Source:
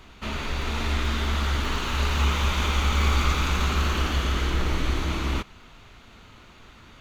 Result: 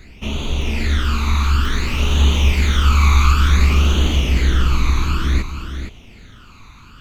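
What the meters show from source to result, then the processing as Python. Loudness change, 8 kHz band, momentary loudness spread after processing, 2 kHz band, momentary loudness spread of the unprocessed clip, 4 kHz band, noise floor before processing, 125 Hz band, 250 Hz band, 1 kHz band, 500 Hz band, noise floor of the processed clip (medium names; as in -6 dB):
+8.0 dB, +6.0 dB, 12 LU, +5.0 dB, 7 LU, +5.5 dB, -50 dBFS, +10.0 dB, +7.0 dB, +4.0 dB, +3.5 dB, -42 dBFS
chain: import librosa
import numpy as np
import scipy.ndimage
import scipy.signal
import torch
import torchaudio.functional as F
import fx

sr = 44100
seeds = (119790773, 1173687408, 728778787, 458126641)

y = fx.phaser_stages(x, sr, stages=12, low_hz=540.0, high_hz=1700.0, hz=0.56, feedback_pct=40)
y = y + 10.0 ** (-8.5 / 20.0) * np.pad(y, (int(467 * sr / 1000.0), 0))[:len(y)]
y = F.gain(torch.from_numpy(y), 7.0).numpy()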